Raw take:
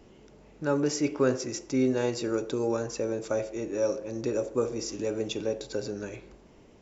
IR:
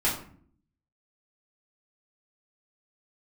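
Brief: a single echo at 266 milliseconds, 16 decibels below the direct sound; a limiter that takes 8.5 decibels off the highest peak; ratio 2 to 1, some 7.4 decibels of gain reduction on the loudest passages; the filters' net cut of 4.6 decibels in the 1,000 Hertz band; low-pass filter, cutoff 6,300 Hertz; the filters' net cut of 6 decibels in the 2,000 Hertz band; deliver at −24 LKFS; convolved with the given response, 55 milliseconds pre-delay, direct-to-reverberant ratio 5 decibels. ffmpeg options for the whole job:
-filter_complex "[0:a]lowpass=6300,equalizer=frequency=1000:width_type=o:gain=-4,equalizer=frequency=2000:width_type=o:gain=-7,acompressor=threshold=-34dB:ratio=2,alimiter=level_in=5dB:limit=-24dB:level=0:latency=1,volume=-5dB,aecho=1:1:266:0.158,asplit=2[link_01][link_02];[1:a]atrim=start_sample=2205,adelay=55[link_03];[link_02][link_03]afir=irnorm=-1:irlink=0,volume=-16dB[link_04];[link_01][link_04]amix=inputs=2:normalize=0,volume=13.5dB"

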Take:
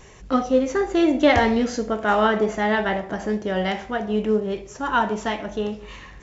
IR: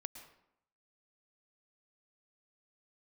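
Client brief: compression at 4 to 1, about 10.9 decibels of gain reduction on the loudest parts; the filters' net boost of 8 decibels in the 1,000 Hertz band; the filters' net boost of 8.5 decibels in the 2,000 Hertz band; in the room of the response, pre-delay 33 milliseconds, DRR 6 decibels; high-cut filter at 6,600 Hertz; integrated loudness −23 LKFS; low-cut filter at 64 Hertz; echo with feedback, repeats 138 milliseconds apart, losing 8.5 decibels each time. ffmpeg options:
-filter_complex "[0:a]highpass=64,lowpass=6600,equalizer=frequency=1000:width_type=o:gain=8.5,equalizer=frequency=2000:width_type=o:gain=7.5,acompressor=threshold=-21dB:ratio=4,aecho=1:1:138|276|414|552:0.376|0.143|0.0543|0.0206,asplit=2[link_01][link_02];[1:a]atrim=start_sample=2205,adelay=33[link_03];[link_02][link_03]afir=irnorm=-1:irlink=0,volume=-2.5dB[link_04];[link_01][link_04]amix=inputs=2:normalize=0"

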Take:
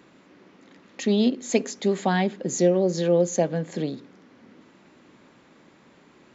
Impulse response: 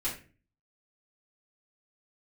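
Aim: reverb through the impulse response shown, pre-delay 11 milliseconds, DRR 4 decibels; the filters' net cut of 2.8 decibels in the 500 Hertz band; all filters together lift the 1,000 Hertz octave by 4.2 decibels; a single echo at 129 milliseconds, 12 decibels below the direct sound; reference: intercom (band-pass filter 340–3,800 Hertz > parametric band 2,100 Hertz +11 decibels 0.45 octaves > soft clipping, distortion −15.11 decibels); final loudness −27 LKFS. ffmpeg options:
-filter_complex "[0:a]equalizer=frequency=500:width_type=o:gain=-4,equalizer=frequency=1000:width_type=o:gain=8,aecho=1:1:129:0.251,asplit=2[link_01][link_02];[1:a]atrim=start_sample=2205,adelay=11[link_03];[link_02][link_03]afir=irnorm=-1:irlink=0,volume=-8.5dB[link_04];[link_01][link_04]amix=inputs=2:normalize=0,highpass=340,lowpass=3800,equalizer=frequency=2100:width_type=o:width=0.45:gain=11,asoftclip=threshold=-15dB,volume=-1dB"

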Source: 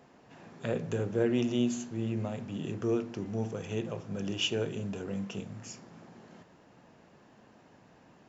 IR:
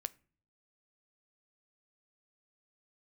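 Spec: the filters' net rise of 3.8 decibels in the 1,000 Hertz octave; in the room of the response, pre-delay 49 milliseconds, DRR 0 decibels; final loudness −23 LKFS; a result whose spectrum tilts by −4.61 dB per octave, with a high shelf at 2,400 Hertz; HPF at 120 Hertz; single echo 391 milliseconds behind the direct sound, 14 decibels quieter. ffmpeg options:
-filter_complex "[0:a]highpass=120,equalizer=frequency=1000:width_type=o:gain=4.5,highshelf=frequency=2400:gain=4.5,aecho=1:1:391:0.2,asplit=2[link_01][link_02];[1:a]atrim=start_sample=2205,adelay=49[link_03];[link_02][link_03]afir=irnorm=-1:irlink=0,volume=2dB[link_04];[link_01][link_04]amix=inputs=2:normalize=0,volume=6dB"

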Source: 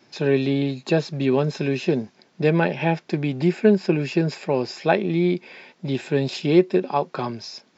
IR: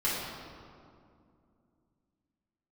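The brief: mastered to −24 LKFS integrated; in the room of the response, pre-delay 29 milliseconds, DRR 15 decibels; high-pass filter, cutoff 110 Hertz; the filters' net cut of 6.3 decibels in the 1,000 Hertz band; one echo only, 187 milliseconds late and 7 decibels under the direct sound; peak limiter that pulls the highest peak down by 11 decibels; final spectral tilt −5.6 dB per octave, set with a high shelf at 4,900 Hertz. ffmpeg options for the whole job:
-filter_complex "[0:a]highpass=110,equalizer=frequency=1000:width_type=o:gain=-9,highshelf=frequency=4900:gain=6.5,alimiter=limit=-16dB:level=0:latency=1,aecho=1:1:187:0.447,asplit=2[link_01][link_02];[1:a]atrim=start_sample=2205,adelay=29[link_03];[link_02][link_03]afir=irnorm=-1:irlink=0,volume=-24.5dB[link_04];[link_01][link_04]amix=inputs=2:normalize=0,volume=2dB"

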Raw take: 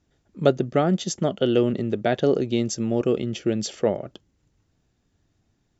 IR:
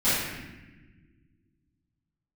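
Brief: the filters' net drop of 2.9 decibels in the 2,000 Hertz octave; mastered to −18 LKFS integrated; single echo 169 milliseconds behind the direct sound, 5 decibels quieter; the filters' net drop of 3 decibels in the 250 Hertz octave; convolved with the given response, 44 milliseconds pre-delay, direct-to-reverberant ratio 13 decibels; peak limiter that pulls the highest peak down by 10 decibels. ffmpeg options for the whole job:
-filter_complex "[0:a]equalizer=frequency=250:width_type=o:gain=-4,equalizer=frequency=2000:width_type=o:gain=-4,alimiter=limit=-16dB:level=0:latency=1,aecho=1:1:169:0.562,asplit=2[link_01][link_02];[1:a]atrim=start_sample=2205,adelay=44[link_03];[link_02][link_03]afir=irnorm=-1:irlink=0,volume=-28dB[link_04];[link_01][link_04]amix=inputs=2:normalize=0,volume=8.5dB"

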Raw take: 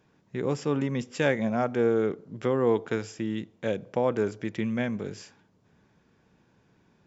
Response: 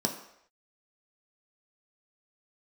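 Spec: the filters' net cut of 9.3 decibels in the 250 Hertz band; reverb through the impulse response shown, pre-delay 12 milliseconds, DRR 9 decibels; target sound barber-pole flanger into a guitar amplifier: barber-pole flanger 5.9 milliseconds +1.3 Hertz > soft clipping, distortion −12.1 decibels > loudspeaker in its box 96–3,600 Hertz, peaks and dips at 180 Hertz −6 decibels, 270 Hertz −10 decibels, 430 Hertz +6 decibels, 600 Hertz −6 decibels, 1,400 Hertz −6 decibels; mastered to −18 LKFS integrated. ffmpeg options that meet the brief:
-filter_complex "[0:a]equalizer=frequency=250:width_type=o:gain=-7,asplit=2[link_01][link_02];[1:a]atrim=start_sample=2205,adelay=12[link_03];[link_02][link_03]afir=irnorm=-1:irlink=0,volume=-16dB[link_04];[link_01][link_04]amix=inputs=2:normalize=0,asplit=2[link_05][link_06];[link_06]adelay=5.9,afreqshift=1.3[link_07];[link_05][link_07]amix=inputs=2:normalize=1,asoftclip=threshold=-26dB,highpass=96,equalizer=frequency=180:width_type=q:width=4:gain=-6,equalizer=frequency=270:width_type=q:width=4:gain=-10,equalizer=frequency=430:width_type=q:width=4:gain=6,equalizer=frequency=600:width_type=q:width=4:gain=-6,equalizer=frequency=1400:width_type=q:width=4:gain=-6,lowpass=frequency=3600:width=0.5412,lowpass=frequency=3600:width=1.3066,volume=17dB"

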